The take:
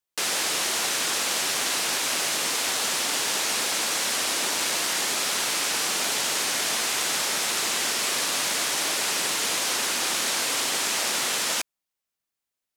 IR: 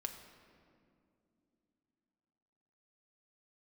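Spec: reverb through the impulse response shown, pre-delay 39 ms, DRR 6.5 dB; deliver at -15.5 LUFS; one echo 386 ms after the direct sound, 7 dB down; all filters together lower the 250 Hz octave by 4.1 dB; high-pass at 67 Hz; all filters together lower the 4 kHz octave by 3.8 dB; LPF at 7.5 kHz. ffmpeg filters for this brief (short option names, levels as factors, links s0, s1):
-filter_complex "[0:a]highpass=67,lowpass=7500,equalizer=f=250:t=o:g=-5.5,equalizer=f=4000:t=o:g=-4.5,aecho=1:1:386:0.447,asplit=2[s0][s1];[1:a]atrim=start_sample=2205,adelay=39[s2];[s1][s2]afir=irnorm=-1:irlink=0,volume=0.562[s3];[s0][s3]amix=inputs=2:normalize=0,volume=2.99"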